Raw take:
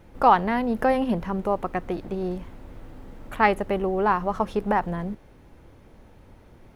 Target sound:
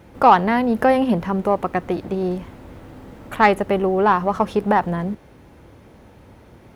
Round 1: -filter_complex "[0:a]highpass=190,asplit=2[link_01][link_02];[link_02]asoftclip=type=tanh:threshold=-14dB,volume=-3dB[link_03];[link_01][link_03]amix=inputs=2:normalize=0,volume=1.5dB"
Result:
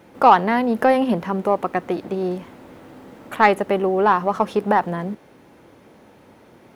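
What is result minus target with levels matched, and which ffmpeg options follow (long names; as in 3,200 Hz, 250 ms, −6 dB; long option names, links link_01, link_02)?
125 Hz band −3.5 dB
-filter_complex "[0:a]highpass=65,asplit=2[link_01][link_02];[link_02]asoftclip=type=tanh:threshold=-14dB,volume=-3dB[link_03];[link_01][link_03]amix=inputs=2:normalize=0,volume=1.5dB"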